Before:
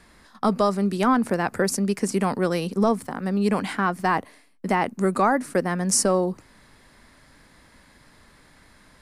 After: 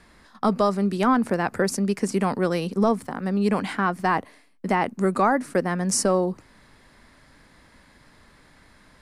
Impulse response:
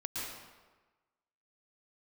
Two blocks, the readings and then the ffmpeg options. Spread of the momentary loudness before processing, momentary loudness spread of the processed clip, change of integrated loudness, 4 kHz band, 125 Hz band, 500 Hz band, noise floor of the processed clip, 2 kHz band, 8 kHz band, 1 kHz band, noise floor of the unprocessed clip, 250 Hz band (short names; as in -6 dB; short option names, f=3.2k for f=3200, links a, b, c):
6 LU, 6 LU, -0.5 dB, -1.5 dB, 0.0 dB, 0.0 dB, -55 dBFS, 0.0 dB, -3.0 dB, 0.0 dB, -55 dBFS, 0.0 dB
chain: -af "highshelf=f=7.6k:g=-6"